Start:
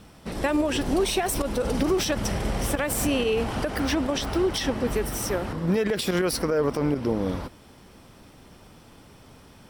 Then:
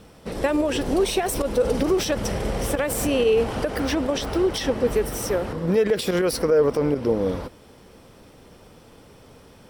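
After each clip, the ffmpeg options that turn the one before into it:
-af "equalizer=f=480:w=2.7:g=7.5"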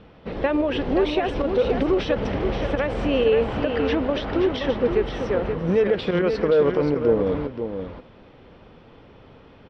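-af "lowpass=f=3.5k:w=0.5412,lowpass=f=3.5k:w=1.3066,aecho=1:1:526:0.447"

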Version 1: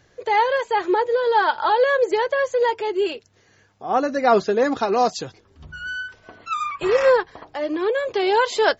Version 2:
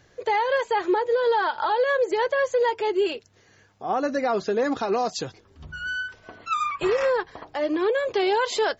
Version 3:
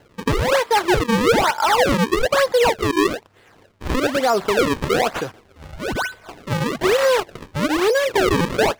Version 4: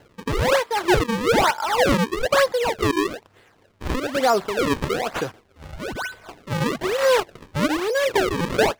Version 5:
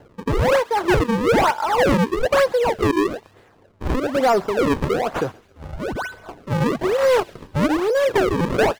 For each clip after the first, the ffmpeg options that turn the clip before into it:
-af "alimiter=limit=-15dB:level=0:latency=1:release=130"
-filter_complex "[0:a]acrusher=samples=36:mix=1:aa=0.000001:lfo=1:lforange=57.6:lforate=1.1,asplit=2[a][b];[b]highpass=f=720:p=1,volume=3dB,asoftclip=type=tanh:threshold=-14.5dB[c];[a][c]amix=inputs=2:normalize=0,lowpass=f=3.9k:p=1,volume=-6dB,volume=8dB"
-af "tremolo=f=2.1:d=0.58"
-filter_complex "[0:a]acrossover=split=1300[a][b];[a]aeval=exprs='0.376*sin(PI/2*1.78*val(0)/0.376)':c=same[c];[b]aecho=1:1:134|268|402|536:0.106|0.0487|0.0224|0.0103[d];[c][d]amix=inputs=2:normalize=0,volume=-4dB"

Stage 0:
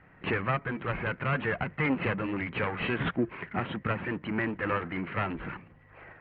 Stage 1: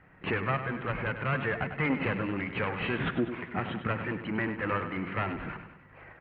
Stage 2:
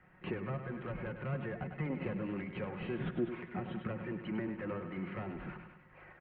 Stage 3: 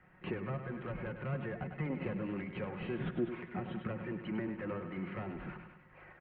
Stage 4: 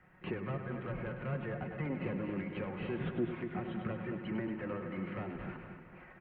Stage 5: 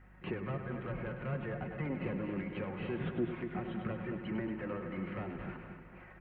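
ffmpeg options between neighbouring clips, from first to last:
-af "aecho=1:1:99|198|297|396|495|594:0.316|0.168|0.0888|0.0471|0.025|0.0132,volume=-1dB"
-filter_complex "[0:a]aecho=1:1:5.5:0.44,acrossover=split=270|660[a][b][c];[c]acompressor=threshold=-42dB:ratio=6[d];[a][b][d]amix=inputs=3:normalize=0,volume=-6dB"
-af anull
-filter_complex "[0:a]asplit=2[a][b];[b]adelay=229,lowpass=f=3.4k:p=1,volume=-8dB,asplit=2[c][d];[d]adelay=229,lowpass=f=3.4k:p=1,volume=0.51,asplit=2[e][f];[f]adelay=229,lowpass=f=3.4k:p=1,volume=0.51,asplit=2[g][h];[h]adelay=229,lowpass=f=3.4k:p=1,volume=0.51,asplit=2[i][j];[j]adelay=229,lowpass=f=3.4k:p=1,volume=0.51,asplit=2[k][l];[l]adelay=229,lowpass=f=3.4k:p=1,volume=0.51[m];[a][c][e][g][i][k][m]amix=inputs=7:normalize=0"
-af "aeval=exprs='val(0)+0.00126*(sin(2*PI*50*n/s)+sin(2*PI*2*50*n/s)/2+sin(2*PI*3*50*n/s)/3+sin(2*PI*4*50*n/s)/4+sin(2*PI*5*50*n/s)/5)':c=same"

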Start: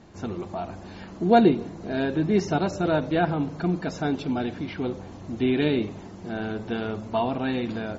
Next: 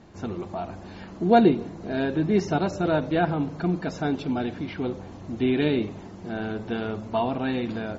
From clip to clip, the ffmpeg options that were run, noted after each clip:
-af "highshelf=f=6.5k:g=-4.5"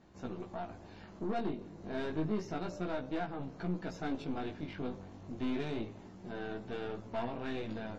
-af "alimiter=limit=-15.5dB:level=0:latency=1:release=389,aeval=exprs='(tanh(15.8*val(0)+0.65)-tanh(0.65))/15.8':c=same,flanger=delay=15.5:depth=4.9:speed=0.3,volume=-4dB"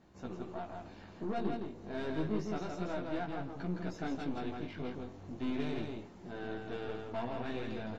-af "aecho=1:1:164:0.631,volume=-1.5dB"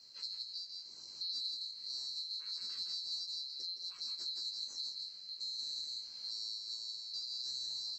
-af "afftfilt=real='real(if(lt(b,736),b+184*(1-2*mod(floor(b/184),2)),b),0)':imag='imag(if(lt(b,736),b+184*(1-2*mod(floor(b/184),2)),b),0)':win_size=2048:overlap=0.75,tremolo=f=0.64:d=0.61,acompressor=threshold=-45dB:ratio=4,volume=5.5dB"

